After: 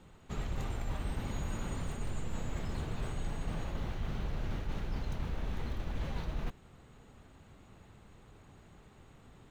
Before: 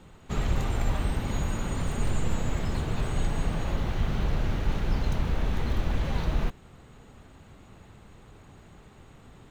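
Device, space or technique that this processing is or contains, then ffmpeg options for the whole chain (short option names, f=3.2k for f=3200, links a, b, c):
compression on the reversed sound: -af "areverse,acompressor=threshold=-25dB:ratio=6,areverse,volume=-6dB"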